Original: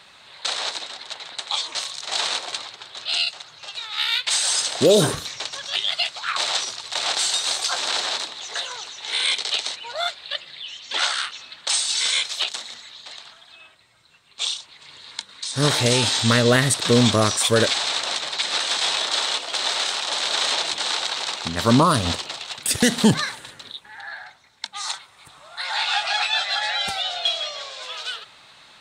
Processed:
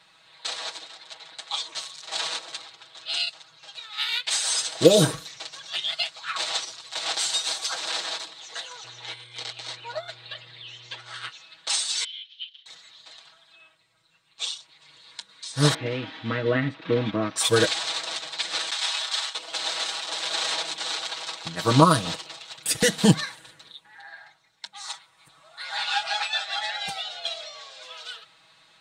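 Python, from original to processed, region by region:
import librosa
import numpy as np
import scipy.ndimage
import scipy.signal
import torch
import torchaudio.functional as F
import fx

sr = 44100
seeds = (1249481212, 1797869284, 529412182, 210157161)

y = fx.over_compress(x, sr, threshold_db=-28.0, ratio=-0.5, at=(8.83, 11.28), fade=0.02)
y = fx.high_shelf(y, sr, hz=5000.0, db=-10.0, at=(8.83, 11.28), fade=0.02)
y = fx.dmg_buzz(y, sr, base_hz=120.0, harmonics=28, level_db=-47.0, tilt_db=-8, odd_only=False, at=(8.83, 11.28), fade=0.02)
y = fx.chain(y, sr, fx.ladder_bandpass(hz=3200.0, resonance_pct=85),
    fx.air_absorb(metres=310.0), at=(12.04, 12.66))
y = fx.chain(y, sr, fx.ladder_lowpass(hz=3000.0, resonance_pct=30),
    fx.peak_eq(hz=260.0, db=15.0, octaves=0.61), at=(15.74, 17.36))
y = fx.chain(y, sr, fx.highpass(hz=890.0, slope=12),
    fx.gate_hold(open_db=-12.0, close_db=-20.0, hold_ms=71.0, range_db=-21, attack_ms=1.4, release_ms=100.0), at=(18.7, 19.35))
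y = y + 0.89 * np.pad(y, (int(6.2 * sr / 1000.0), 0))[:len(y)]
y = fx.upward_expand(y, sr, threshold_db=-28.0, expansion=1.5)
y = F.gain(torch.from_numpy(y), -1.0).numpy()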